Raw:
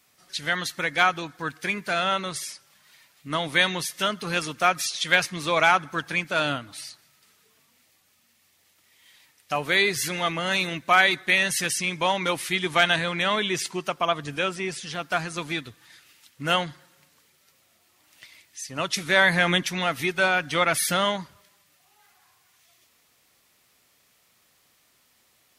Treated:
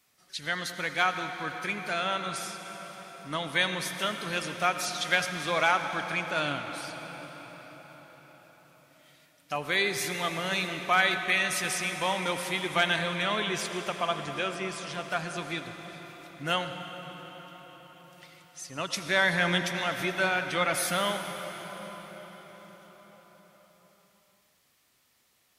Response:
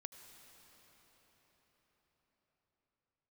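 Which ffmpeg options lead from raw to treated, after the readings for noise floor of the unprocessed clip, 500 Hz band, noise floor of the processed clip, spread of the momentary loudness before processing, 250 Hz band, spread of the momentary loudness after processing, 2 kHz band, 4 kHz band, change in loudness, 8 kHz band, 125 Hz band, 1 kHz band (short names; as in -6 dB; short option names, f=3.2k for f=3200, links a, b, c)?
-64 dBFS, -4.5 dB, -68 dBFS, 12 LU, -4.5 dB, 18 LU, -4.5 dB, -5.0 dB, -5.0 dB, -5.0 dB, -4.5 dB, -4.5 dB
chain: -filter_complex "[1:a]atrim=start_sample=2205,asetrate=41895,aresample=44100[a];[0:a][a]afir=irnorm=-1:irlink=0"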